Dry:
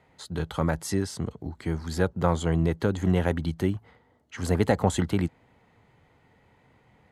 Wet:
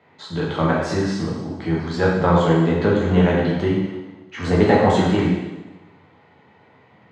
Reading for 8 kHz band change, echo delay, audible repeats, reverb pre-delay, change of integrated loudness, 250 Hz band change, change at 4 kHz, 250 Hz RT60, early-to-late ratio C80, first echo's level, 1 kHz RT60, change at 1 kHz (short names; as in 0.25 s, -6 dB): n/a, none, none, 7 ms, +8.0 dB, +8.5 dB, +7.5 dB, 1.2 s, 3.5 dB, none, 1.1 s, +10.0 dB